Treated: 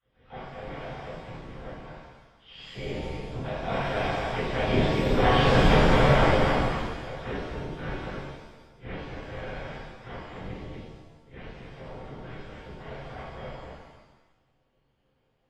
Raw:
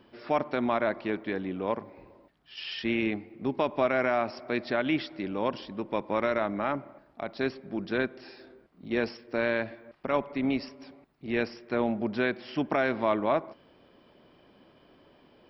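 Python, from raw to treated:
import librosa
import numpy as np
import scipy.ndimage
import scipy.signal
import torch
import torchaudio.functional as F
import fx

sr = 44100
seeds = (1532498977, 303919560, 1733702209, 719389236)

p1 = fx.lower_of_two(x, sr, delay_ms=3.2)
p2 = fx.doppler_pass(p1, sr, speed_mps=15, closest_m=1.3, pass_at_s=5.52)
p3 = fx.dispersion(p2, sr, late='lows', ms=56.0, hz=450.0)
p4 = fx.fold_sine(p3, sr, drive_db=13, ceiling_db=-26.5)
p5 = p3 + F.gain(torch.from_numpy(p4), -12.0).numpy()
p6 = fx.echo_feedback(p5, sr, ms=237, feedback_pct=15, wet_db=-4)
p7 = fx.lpc_vocoder(p6, sr, seeds[0], excitation='whisper', order=8)
p8 = fx.rev_shimmer(p7, sr, seeds[1], rt60_s=1.0, semitones=7, shimmer_db=-8, drr_db=-12.0)
y = F.gain(torch.from_numpy(p8), 5.0).numpy()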